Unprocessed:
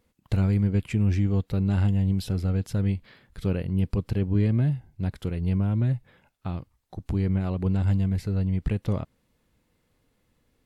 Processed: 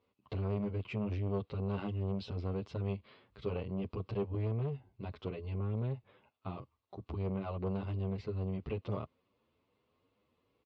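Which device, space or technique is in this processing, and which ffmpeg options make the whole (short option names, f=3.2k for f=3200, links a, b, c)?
barber-pole flanger into a guitar amplifier: -filter_complex "[0:a]asplit=2[a][b];[b]adelay=8.8,afreqshift=2.5[c];[a][c]amix=inputs=2:normalize=1,asoftclip=type=tanh:threshold=-25dB,highpass=93,equalizer=f=160:t=q:w=4:g=-7,equalizer=f=410:t=q:w=4:g=7,equalizer=f=620:t=q:w=4:g=4,equalizer=f=1.1k:t=q:w=4:g=9,equalizer=f=1.7k:t=q:w=4:g=-7,equalizer=f=2.7k:t=q:w=4:g=4,lowpass=f=4.4k:w=0.5412,lowpass=f=4.4k:w=1.3066,volume=-4dB"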